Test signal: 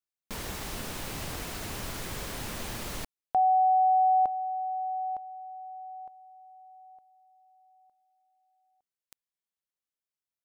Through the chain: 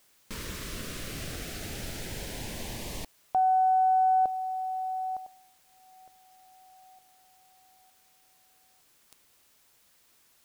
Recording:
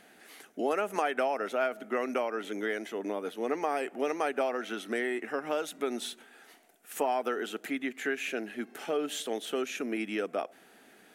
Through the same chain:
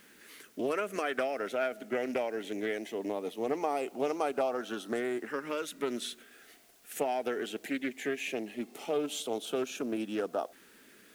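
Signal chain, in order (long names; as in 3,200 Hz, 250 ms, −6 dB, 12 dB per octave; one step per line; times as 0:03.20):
auto-filter notch saw up 0.19 Hz 690–2,400 Hz
background noise white −64 dBFS
highs frequency-modulated by the lows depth 0.15 ms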